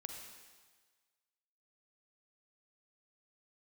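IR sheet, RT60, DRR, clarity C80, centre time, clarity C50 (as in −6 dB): 1.5 s, 3.0 dB, 5.0 dB, 52 ms, 3.5 dB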